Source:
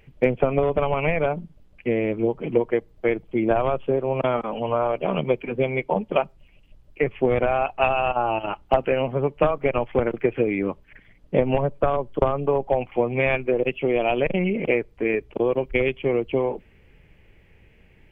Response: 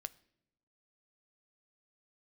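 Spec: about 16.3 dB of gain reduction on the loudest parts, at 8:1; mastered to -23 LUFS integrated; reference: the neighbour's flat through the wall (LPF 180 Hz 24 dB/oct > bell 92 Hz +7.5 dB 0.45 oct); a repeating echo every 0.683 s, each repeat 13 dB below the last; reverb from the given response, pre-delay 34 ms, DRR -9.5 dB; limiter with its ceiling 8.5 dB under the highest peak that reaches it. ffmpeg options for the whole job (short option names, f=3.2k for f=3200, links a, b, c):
-filter_complex "[0:a]acompressor=threshold=-32dB:ratio=8,alimiter=level_in=2dB:limit=-24dB:level=0:latency=1,volume=-2dB,aecho=1:1:683|1366|2049:0.224|0.0493|0.0108,asplit=2[a][b];[1:a]atrim=start_sample=2205,adelay=34[c];[b][c]afir=irnorm=-1:irlink=0,volume=13dB[d];[a][d]amix=inputs=2:normalize=0,lowpass=f=180:w=0.5412,lowpass=f=180:w=1.3066,equalizer=f=92:t=o:w=0.45:g=7.5,volume=16dB"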